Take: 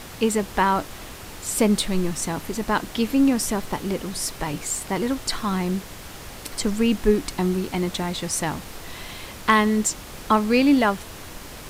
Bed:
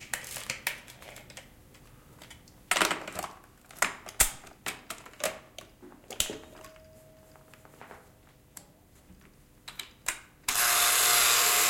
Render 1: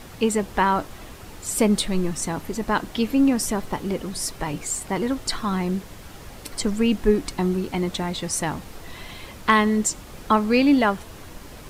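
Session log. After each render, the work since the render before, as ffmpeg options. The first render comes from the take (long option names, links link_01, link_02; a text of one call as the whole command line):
ffmpeg -i in.wav -af "afftdn=noise_reduction=6:noise_floor=-39" out.wav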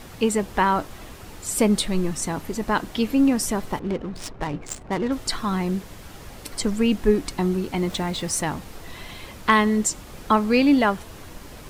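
ffmpeg -i in.wav -filter_complex "[0:a]asettb=1/sr,asplit=3[link_01][link_02][link_03];[link_01]atrim=end=3.794[link_04];[link_02]atrim=start=3.79:end=5.12,asetpts=PTS-STARTPTS,afade=type=in:duration=0.004:curve=qsin,afade=type=out:start_time=1.326:duration=0.004:curve=qsin,adynamicsmooth=sensitivity=5:basefreq=720[link_05];[link_03]atrim=start=5.116[link_06];[link_04][link_05]acrossfade=duration=0.004:curve1=hsin:curve2=qsin[link_07];[link_07][link_06]acrossfade=duration=0.004:curve1=qsin:curve2=hsin,asettb=1/sr,asplit=3[link_08][link_09][link_10];[link_08]atrim=end=7.784[link_11];[link_09]atrim=start=7.78:end=8.41,asetpts=PTS-STARTPTS,afade=type=in:duration=0.004:curve=qsin,afade=type=out:start_time=0.626:duration=0.004:curve=qsin,aeval=exprs='val(0)+0.5*0.01*sgn(val(0))':channel_layout=same[link_12];[link_10]atrim=start=8.406[link_13];[link_11][link_12]acrossfade=duration=0.004:curve1=hsin:curve2=qsin[link_14];[link_14][link_13]acrossfade=duration=0.004:curve1=qsin:curve2=hsin" out.wav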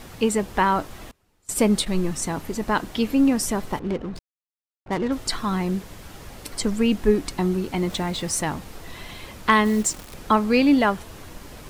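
ffmpeg -i in.wav -filter_complex "[0:a]asettb=1/sr,asplit=3[link_01][link_02][link_03];[link_01]atrim=end=1.114[link_04];[link_02]atrim=start=1.11:end=1.87,asetpts=PTS-STARTPTS,afade=type=in:duration=0.004:curve=qsin,afade=type=out:start_time=0.756:duration=0.004:curve=qsin,agate=range=-26dB:threshold=-29dB:ratio=16:release=100:detection=peak[link_05];[link_03]atrim=start=1.866[link_06];[link_04][link_05]acrossfade=duration=0.004:curve1=hsin:curve2=qsin[link_07];[link_07][link_06]acrossfade=duration=0.004:curve1=qsin:curve2=hsin,asplit=3[link_08][link_09][link_10];[link_08]afade=type=out:start_time=9.64:duration=0.02[link_11];[link_09]acrusher=bits=7:dc=4:mix=0:aa=0.000001,afade=type=in:start_time=9.64:duration=0.02,afade=type=out:start_time=10.13:duration=0.02[link_12];[link_10]afade=type=in:start_time=10.13:duration=0.02[link_13];[link_11][link_12][link_13]amix=inputs=3:normalize=0,asplit=3[link_14][link_15][link_16];[link_14]atrim=end=4.19,asetpts=PTS-STARTPTS,afade=type=out:start_time=4.186:duration=0.004:curve=hsin[link_17];[link_15]atrim=start=4.19:end=4.86,asetpts=PTS-STARTPTS,volume=0[link_18];[link_16]atrim=start=4.86,asetpts=PTS-STARTPTS,afade=type=in:duration=0.004:curve=hsin[link_19];[link_17][link_18][link_19]concat=n=3:v=0:a=1" out.wav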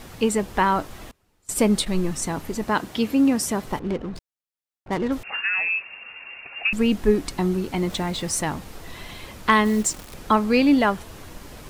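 ffmpeg -i in.wav -filter_complex "[0:a]asettb=1/sr,asplit=3[link_01][link_02][link_03];[link_01]atrim=end=2.664[link_04];[link_02]atrim=start=2.66:end=3.66,asetpts=PTS-STARTPTS,afade=type=in:duration=0.004:curve=qsin,afade=type=out:start_time=0.996:duration=0.004:curve=qsin,highpass=72[link_05];[link_03]atrim=start=3.656[link_06];[link_04][link_05]acrossfade=duration=0.004:curve1=hsin:curve2=qsin[link_07];[link_07][link_06]acrossfade=duration=0.004:curve1=qsin:curve2=hsin,asettb=1/sr,asplit=3[link_08][link_09][link_10];[link_08]atrim=end=5.234[link_11];[link_09]atrim=start=5.23:end=6.73,asetpts=PTS-STARTPTS,afade=type=in:duration=0.004:curve=qsin,afade=type=out:start_time=1.496:duration=0.004:curve=qsin,lowpass=frequency=2400:width_type=q:width=0.5098,lowpass=frequency=2400:width_type=q:width=0.6013,lowpass=frequency=2400:width_type=q:width=0.9,lowpass=frequency=2400:width_type=q:width=2.563,afreqshift=-2800[link_12];[link_10]atrim=start=6.726[link_13];[link_11][link_12]acrossfade=duration=0.004:curve1=hsin:curve2=qsin[link_14];[link_14][link_13]acrossfade=duration=0.004:curve1=qsin:curve2=hsin" out.wav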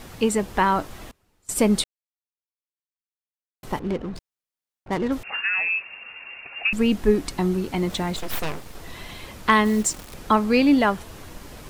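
ffmpeg -i in.wav -filter_complex "[0:a]asettb=1/sr,asplit=3[link_01][link_02][link_03];[link_01]atrim=end=8.164[link_04];[link_02]atrim=start=8.16:end=8.75,asetpts=PTS-STARTPTS,afade=type=in:duration=0.004:curve=qsin,afade=type=out:start_time=0.586:duration=0.004:curve=qsin,aeval=exprs='abs(val(0))':channel_layout=same[link_05];[link_03]atrim=start=8.746[link_06];[link_04][link_05]acrossfade=duration=0.004:curve1=hsin:curve2=qsin[link_07];[link_07][link_06]acrossfade=duration=0.004:curve1=qsin:curve2=hsin,asplit=3[link_08][link_09][link_10];[link_08]atrim=end=1.84,asetpts=PTS-STARTPTS,afade=type=out:start_time=1.836:duration=0.004:curve=hsin[link_11];[link_09]atrim=start=1.84:end=3.63,asetpts=PTS-STARTPTS,volume=0[link_12];[link_10]atrim=start=3.63,asetpts=PTS-STARTPTS,afade=type=in:duration=0.004:curve=hsin[link_13];[link_11][link_12][link_13]concat=n=3:v=0:a=1" out.wav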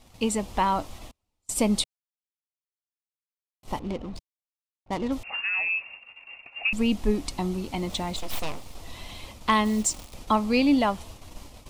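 ffmpeg -i in.wav -af "agate=range=-12dB:threshold=-39dB:ratio=16:detection=peak,equalizer=frequency=160:width_type=o:width=0.67:gain=-7,equalizer=frequency=400:width_type=o:width=0.67:gain=-8,equalizer=frequency=1600:width_type=o:width=0.67:gain=-12,equalizer=frequency=16000:width_type=o:width=0.67:gain=-8" out.wav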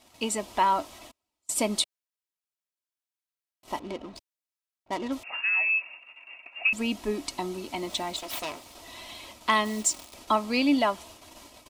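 ffmpeg -i in.wav -af "highpass=frequency=390:poles=1,aecho=1:1:3.1:0.41" out.wav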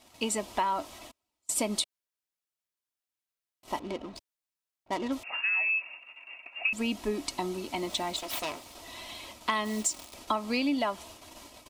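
ffmpeg -i in.wav -af "acompressor=threshold=-25dB:ratio=6" out.wav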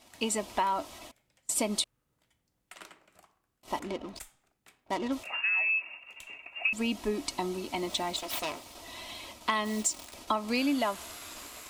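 ffmpeg -i in.wav -i bed.wav -filter_complex "[1:a]volume=-23.5dB[link_01];[0:a][link_01]amix=inputs=2:normalize=0" out.wav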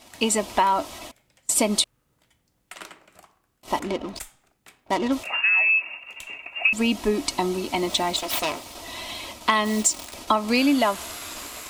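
ffmpeg -i in.wav -af "volume=8.5dB" out.wav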